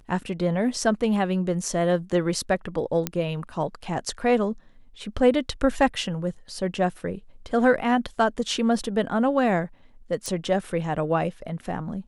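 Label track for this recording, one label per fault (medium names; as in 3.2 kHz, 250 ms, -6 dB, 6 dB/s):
3.070000	3.070000	pop -8 dBFS
10.260000	10.260000	pop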